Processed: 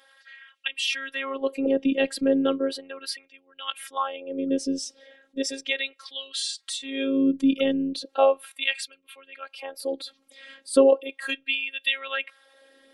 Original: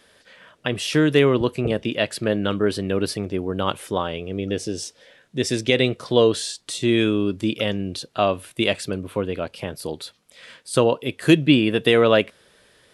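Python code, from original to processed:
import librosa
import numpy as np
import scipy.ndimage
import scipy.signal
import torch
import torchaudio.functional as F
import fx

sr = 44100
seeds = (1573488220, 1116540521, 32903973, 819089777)

y = fx.envelope_sharpen(x, sr, power=1.5)
y = fx.filter_lfo_highpass(y, sr, shape='sine', hz=0.36, low_hz=200.0, high_hz=2500.0, q=1.8)
y = fx.robotise(y, sr, hz=271.0)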